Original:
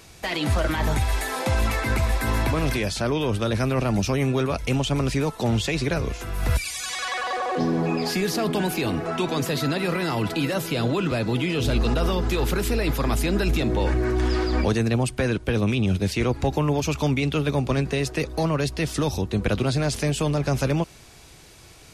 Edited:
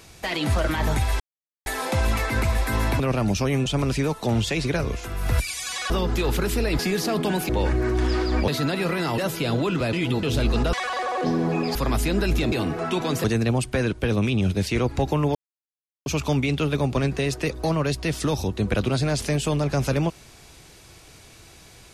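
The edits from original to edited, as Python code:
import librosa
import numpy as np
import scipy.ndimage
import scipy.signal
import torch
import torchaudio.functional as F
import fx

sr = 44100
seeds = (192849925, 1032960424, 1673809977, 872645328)

y = fx.edit(x, sr, fx.insert_silence(at_s=1.2, length_s=0.46),
    fx.cut(start_s=2.54, length_s=1.14),
    fx.cut(start_s=4.34, length_s=0.49),
    fx.swap(start_s=7.07, length_s=1.02, other_s=12.04, other_length_s=0.89),
    fx.swap(start_s=8.79, length_s=0.72, other_s=13.7, other_length_s=0.99),
    fx.cut(start_s=10.21, length_s=0.28),
    fx.reverse_span(start_s=11.24, length_s=0.3),
    fx.insert_silence(at_s=16.8, length_s=0.71), tone=tone)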